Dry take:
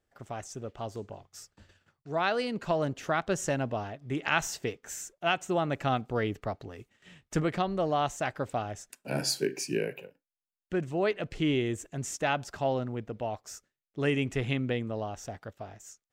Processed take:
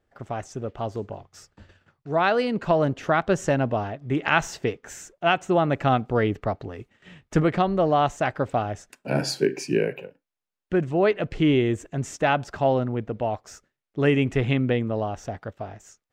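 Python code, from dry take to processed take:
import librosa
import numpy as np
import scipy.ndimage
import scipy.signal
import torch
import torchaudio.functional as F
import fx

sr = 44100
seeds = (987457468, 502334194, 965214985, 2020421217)

y = fx.lowpass(x, sr, hz=2300.0, slope=6)
y = F.gain(torch.from_numpy(y), 8.0).numpy()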